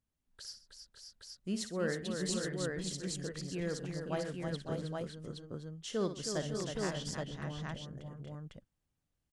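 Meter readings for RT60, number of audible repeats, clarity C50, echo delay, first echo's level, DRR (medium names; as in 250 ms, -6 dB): no reverb, 5, no reverb, 58 ms, -10.0 dB, no reverb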